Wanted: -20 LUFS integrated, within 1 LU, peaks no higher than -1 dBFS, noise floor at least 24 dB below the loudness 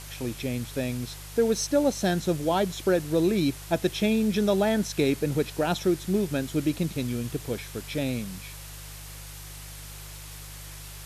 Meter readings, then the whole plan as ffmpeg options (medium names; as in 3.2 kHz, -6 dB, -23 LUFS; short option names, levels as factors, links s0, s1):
hum 50 Hz; highest harmonic 150 Hz; hum level -41 dBFS; noise floor -42 dBFS; noise floor target -51 dBFS; loudness -27.0 LUFS; peak level -11.0 dBFS; loudness target -20.0 LUFS
-> -af "bandreject=f=50:t=h:w=4,bandreject=f=100:t=h:w=4,bandreject=f=150:t=h:w=4"
-af "afftdn=nr=9:nf=-42"
-af "volume=2.24"